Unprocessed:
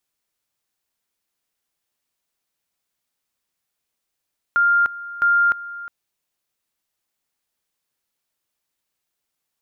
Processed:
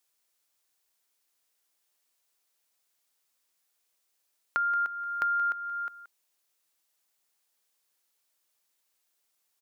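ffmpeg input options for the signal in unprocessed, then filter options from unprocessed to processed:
-f lavfi -i "aevalsrc='pow(10,(-13-17*gte(mod(t,0.66),0.3))/20)*sin(2*PI*1400*t)':duration=1.32:sample_rate=44100"
-af "bass=frequency=250:gain=-12,treble=frequency=4000:gain=4,acompressor=threshold=-29dB:ratio=4,aecho=1:1:177:0.188"

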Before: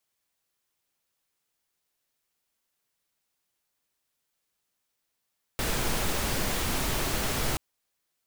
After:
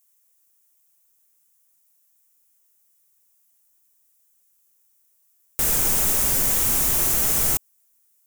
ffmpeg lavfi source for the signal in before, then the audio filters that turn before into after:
-f lavfi -i "anoisesrc=color=pink:amplitude=0.204:duration=1.98:sample_rate=44100:seed=1"
-af "aexciter=amount=2.6:drive=9.4:freq=6000"

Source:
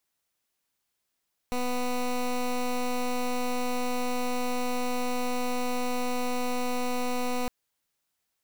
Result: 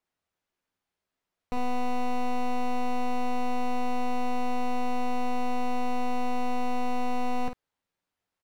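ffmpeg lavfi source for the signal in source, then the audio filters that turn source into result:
-f lavfi -i "aevalsrc='0.0398*(2*lt(mod(248*t,1),0.15)-1)':duration=5.96:sample_rate=44100"
-af "lowpass=frequency=1600:poles=1,aecho=1:1:11|51:0.473|0.398"

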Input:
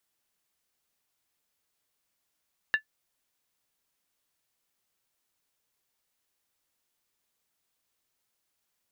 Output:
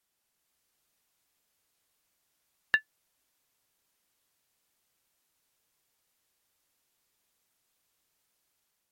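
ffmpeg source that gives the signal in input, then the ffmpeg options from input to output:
-f lavfi -i "aevalsrc='0.158*pow(10,-3*t/0.1)*sin(2*PI*1740*t)+0.0473*pow(10,-3*t/0.079)*sin(2*PI*2773.6*t)+0.0141*pow(10,-3*t/0.068)*sin(2*PI*3716.6*t)+0.00422*pow(10,-3*t/0.066)*sin(2*PI*3995*t)+0.00126*pow(10,-3*t/0.061)*sin(2*PI*4616.2*t)':duration=0.63:sample_rate=44100"
-af "dynaudnorm=framelen=180:gausssize=5:maxgain=3.5dB" -ar 48000 -c:a libmp3lame -b:a 64k

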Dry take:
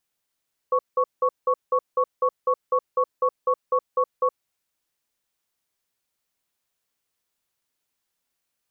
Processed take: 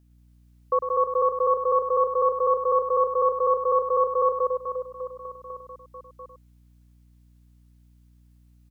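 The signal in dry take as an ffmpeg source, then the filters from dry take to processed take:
-f lavfi -i "aevalsrc='0.1*(sin(2*PI*508*t)+sin(2*PI*1110*t))*clip(min(mod(t,0.25),0.07-mod(t,0.25))/0.005,0,1)':duration=3.6:sample_rate=44100"
-filter_complex "[0:a]asplit=2[link_01][link_02];[link_02]aecho=0:1:180|432|784.8|1279|1970:0.631|0.398|0.251|0.158|0.1[link_03];[link_01][link_03]amix=inputs=2:normalize=0,aeval=exprs='val(0)+0.00141*(sin(2*PI*60*n/s)+sin(2*PI*2*60*n/s)/2+sin(2*PI*3*60*n/s)/3+sin(2*PI*4*60*n/s)/4+sin(2*PI*5*60*n/s)/5)':channel_layout=same,asplit=2[link_04][link_05];[link_05]aecho=0:1:101:0.398[link_06];[link_04][link_06]amix=inputs=2:normalize=0"

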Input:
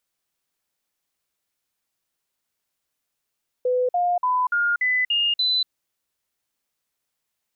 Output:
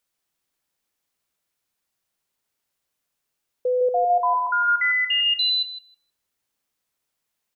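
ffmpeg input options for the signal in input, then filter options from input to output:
-f lavfi -i "aevalsrc='0.126*clip(min(mod(t,0.29),0.24-mod(t,0.29))/0.005,0,1)*sin(2*PI*501*pow(2,floor(t/0.29)/2)*mod(t,0.29))':duration=2.03:sample_rate=44100"
-filter_complex "[0:a]asplit=2[link_01][link_02];[link_02]adelay=158,lowpass=frequency=1500:poles=1,volume=-4.5dB,asplit=2[link_03][link_04];[link_04]adelay=158,lowpass=frequency=1500:poles=1,volume=0.3,asplit=2[link_05][link_06];[link_06]adelay=158,lowpass=frequency=1500:poles=1,volume=0.3,asplit=2[link_07][link_08];[link_08]adelay=158,lowpass=frequency=1500:poles=1,volume=0.3[link_09];[link_01][link_03][link_05][link_07][link_09]amix=inputs=5:normalize=0"

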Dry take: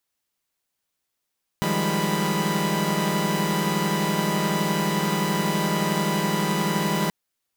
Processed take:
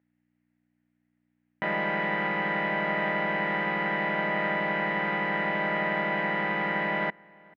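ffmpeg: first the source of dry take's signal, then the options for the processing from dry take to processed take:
-f lavfi -i "aevalsrc='0.0531*((2*mod(155.56*t,1)-1)+(2*mod(174.61*t,1)-1)+(2*mod(196*t,1)-1)+(2*mod(207.65*t,1)-1)+(2*mod(987.77*t,1)-1))':duration=5.48:sample_rate=44100"
-filter_complex "[0:a]aeval=exprs='val(0)+0.00141*(sin(2*PI*60*n/s)+sin(2*PI*2*60*n/s)/2+sin(2*PI*3*60*n/s)/3+sin(2*PI*4*60*n/s)/4+sin(2*PI*5*60*n/s)/5)':channel_layout=same,highpass=350,equalizer=frequency=400:width_type=q:width=4:gain=-9,equalizer=frequency=670:width_type=q:width=4:gain=3,equalizer=frequency=1100:width_type=q:width=4:gain=-9,equalizer=frequency=1900:width_type=q:width=4:gain=7,lowpass=frequency=2300:width=0.5412,lowpass=frequency=2300:width=1.3066,asplit=2[link_01][link_02];[link_02]adelay=437.3,volume=-25dB,highshelf=frequency=4000:gain=-9.84[link_03];[link_01][link_03]amix=inputs=2:normalize=0"

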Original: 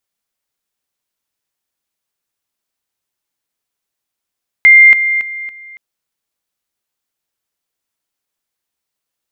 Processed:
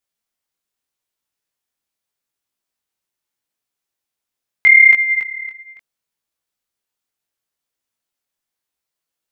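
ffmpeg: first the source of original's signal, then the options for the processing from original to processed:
-f lavfi -i "aevalsrc='pow(10,(-1.5-10*floor(t/0.28))/20)*sin(2*PI*2100*t)':duration=1.12:sample_rate=44100"
-af "flanger=delay=16.5:depth=7.2:speed=0.79"

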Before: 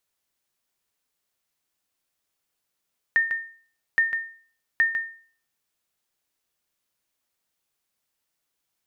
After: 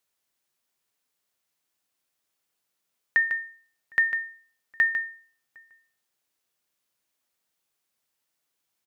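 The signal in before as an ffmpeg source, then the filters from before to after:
-f lavfi -i "aevalsrc='0.224*(sin(2*PI*1820*mod(t,0.82))*exp(-6.91*mod(t,0.82)/0.46)+0.355*sin(2*PI*1820*max(mod(t,0.82)-0.15,0))*exp(-6.91*max(mod(t,0.82)-0.15,0)/0.46))':duration=2.46:sample_rate=44100"
-filter_complex "[0:a]lowshelf=frequency=61:gain=-11,asplit=2[link_01][link_02];[link_02]adelay=758,volume=-27dB,highshelf=frequency=4000:gain=-17.1[link_03];[link_01][link_03]amix=inputs=2:normalize=0"

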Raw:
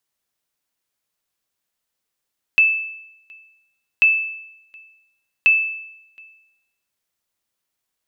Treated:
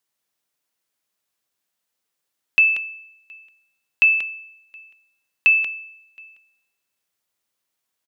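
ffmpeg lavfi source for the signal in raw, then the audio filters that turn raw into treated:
-f lavfi -i "aevalsrc='0.422*(sin(2*PI*2630*mod(t,1.44))*exp(-6.91*mod(t,1.44)/0.84)+0.0355*sin(2*PI*2630*max(mod(t,1.44)-0.72,0))*exp(-6.91*max(mod(t,1.44)-0.72,0)/0.84))':duration=4.32:sample_rate=44100"
-af "highpass=frequency=120:poles=1,aecho=1:1:185:0.398"

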